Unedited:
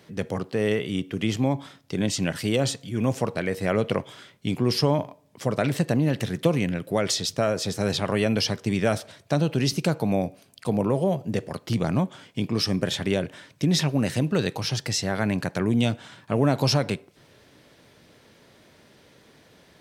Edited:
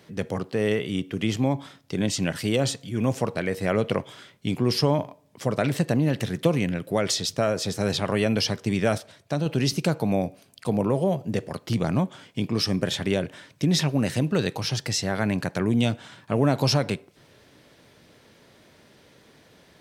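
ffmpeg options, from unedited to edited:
-filter_complex "[0:a]asplit=3[s0][s1][s2];[s0]atrim=end=8.982[s3];[s1]atrim=start=8.978:end=9.462,asetpts=PTS-STARTPTS,volume=0.668[s4];[s2]atrim=start=9.458[s5];[s3][s4]acrossfade=d=0.004:c1=hsin:c2=hsin[s6];[s6][s5]acrossfade=d=0.004:c1=hsin:c2=hsin"

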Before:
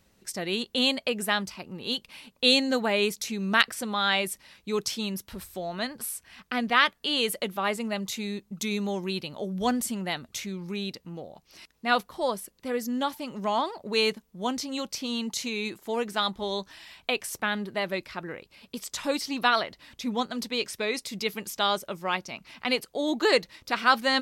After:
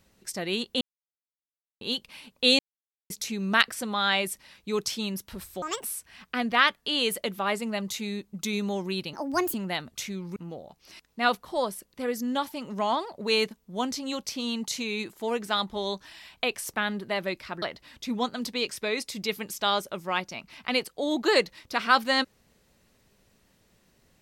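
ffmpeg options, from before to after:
-filter_complex "[0:a]asplit=11[s0][s1][s2][s3][s4][s5][s6][s7][s8][s9][s10];[s0]atrim=end=0.81,asetpts=PTS-STARTPTS,afade=t=out:st=0.806:d=0.004:c=hsin[s11];[s1]atrim=start=0.81:end=1.81,asetpts=PTS-STARTPTS,volume=0[s12];[s2]atrim=start=1.81:end=2.59,asetpts=PTS-STARTPTS,afade=t=in:d=0.004:c=hsin,afade=t=out:st=0.776:d=0.004:c=hsin[s13];[s3]atrim=start=2.59:end=3.1,asetpts=PTS-STARTPTS,volume=0[s14];[s4]atrim=start=3.1:end=5.624,asetpts=PTS-STARTPTS,afade=t=in:d=0.004:c=hsin[s15];[s5]atrim=start=5.62:end=6.02,asetpts=PTS-STARTPTS,asetrate=79821,aresample=44100[s16];[s6]atrim=start=6.016:end=9.314[s17];[s7]atrim=start=9.31:end=9.91,asetpts=PTS-STARTPTS,asetrate=64386,aresample=44100,atrim=end_sample=18123,asetpts=PTS-STARTPTS[s18];[s8]atrim=start=9.906:end=10.732[s19];[s9]atrim=start=11.018:end=18.282[s20];[s10]atrim=start=19.588[s21];[s11][s12][s13][s14][s15]concat=n=5:v=0:a=1[s22];[s22][s16]acrossfade=d=0.004:c1=hsin:c2=hsin[s23];[s23][s17]acrossfade=d=0.004:c1=hsin:c2=hsin[s24];[s24][s18]acrossfade=d=0.004:c1=hsin:c2=hsin[s25];[s25][s19]acrossfade=d=0.004:c1=hsin:c2=hsin[s26];[s26][s20]acrossfade=d=0.004:c1=hsin:c2=hsin[s27];[s27][s21]acrossfade=d=0.004:c1=hsin:c2=hsin"

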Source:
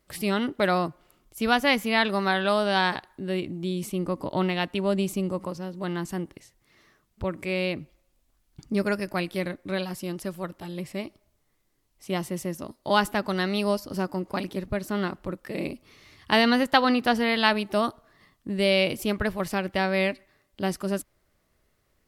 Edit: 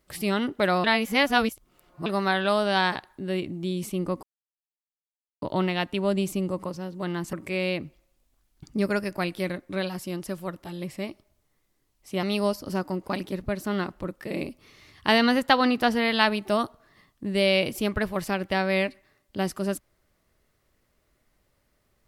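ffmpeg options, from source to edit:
-filter_complex "[0:a]asplit=6[s0][s1][s2][s3][s4][s5];[s0]atrim=end=0.842[s6];[s1]atrim=start=0.838:end=2.062,asetpts=PTS-STARTPTS,areverse[s7];[s2]atrim=start=2.058:end=4.23,asetpts=PTS-STARTPTS,afade=t=out:st=2.168:d=0.004:c=hsin,apad=pad_dur=1.19[s8];[s3]atrim=start=4.23:end=6.142,asetpts=PTS-STARTPTS,afade=t=in:d=0.004:c=hsin[s9];[s4]atrim=start=7.288:end=12.192[s10];[s5]atrim=start=13.468[s11];[s6][s7]acrossfade=d=0.004:c1=hsin:c2=hsin[s12];[s8][s9]concat=n=2:v=0:a=1[s13];[s12][s13]acrossfade=d=0.004:c1=hsin:c2=hsin[s14];[s14][s10]acrossfade=d=0.004:c1=hsin:c2=hsin[s15];[s15][s11]acrossfade=d=0.004:c1=hsin:c2=hsin"

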